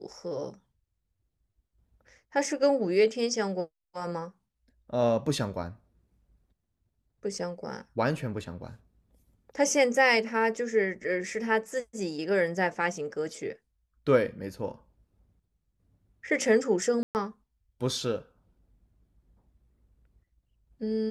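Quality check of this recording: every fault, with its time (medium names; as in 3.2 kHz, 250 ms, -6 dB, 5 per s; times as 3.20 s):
17.03–17.15 s: dropout 119 ms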